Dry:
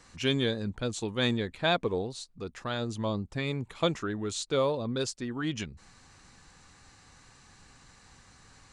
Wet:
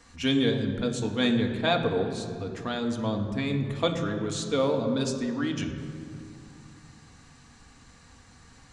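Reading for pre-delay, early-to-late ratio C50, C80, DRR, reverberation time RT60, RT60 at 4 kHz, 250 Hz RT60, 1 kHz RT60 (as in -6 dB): 3 ms, 7.0 dB, 8.0 dB, 3.0 dB, 2.5 s, 1.6 s, 3.4 s, 2.3 s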